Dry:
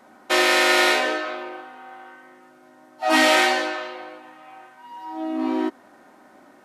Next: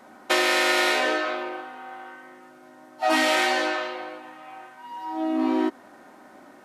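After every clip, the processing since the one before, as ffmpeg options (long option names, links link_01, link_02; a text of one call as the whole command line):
ffmpeg -i in.wav -af "acompressor=threshold=-20dB:ratio=6,volume=2dB" out.wav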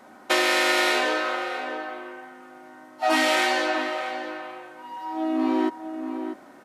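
ffmpeg -i in.wav -filter_complex "[0:a]asplit=2[link_01][link_02];[link_02]adelay=641.4,volume=-8dB,highshelf=frequency=4000:gain=-14.4[link_03];[link_01][link_03]amix=inputs=2:normalize=0" out.wav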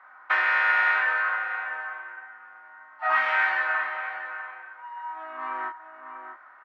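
ffmpeg -i in.wav -filter_complex "[0:a]asuperpass=centerf=1400:order=4:qfactor=1.6,asplit=2[link_01][link_02];[link_02]adelay=27,volume=-5dB[link_03];[link_01][link_03]amix=inputs=2:normalize=0,volume=4dB" out.wav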